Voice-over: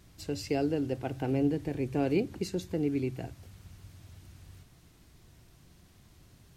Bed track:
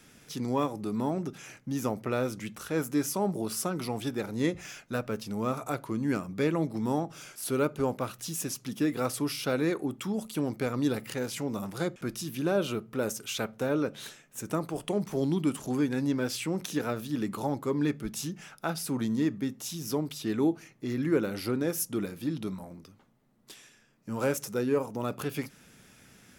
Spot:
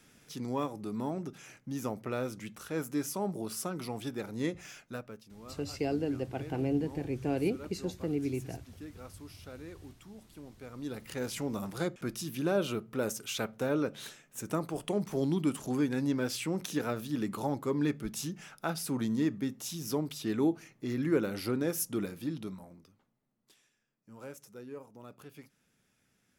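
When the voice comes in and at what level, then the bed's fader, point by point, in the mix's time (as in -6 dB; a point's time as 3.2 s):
5.30 s, -2.5 dB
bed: 4.84 s -5 dB
5.3 s -19 dB
10.56 s -19 dB
11.25 s -2 dB
22.08 s -2 dB
23.75 s -17.5 dB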